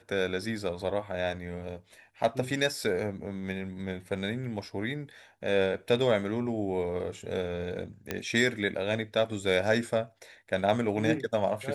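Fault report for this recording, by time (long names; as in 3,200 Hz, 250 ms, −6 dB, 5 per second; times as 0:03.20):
0:08.11: click −15 dBFS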